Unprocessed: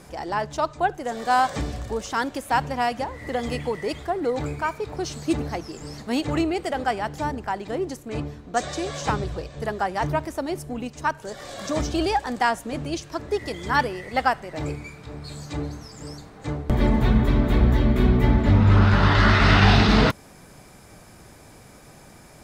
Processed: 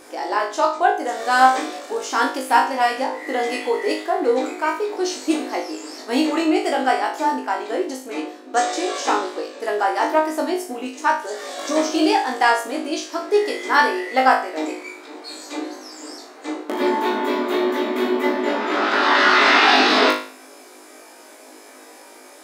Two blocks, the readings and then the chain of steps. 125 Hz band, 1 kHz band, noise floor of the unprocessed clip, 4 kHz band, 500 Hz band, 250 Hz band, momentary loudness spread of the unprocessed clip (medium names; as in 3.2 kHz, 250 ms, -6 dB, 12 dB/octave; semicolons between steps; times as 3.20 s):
under -30 dB, +6.5 dB, -48 dBFS, +6.5 dB, +6.0 dB, +1.0 dB, 16 LU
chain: brick-wall FIR high-pass 240 Hz; flutter echo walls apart 3.3 m, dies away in 0.42 s; trim +3 dB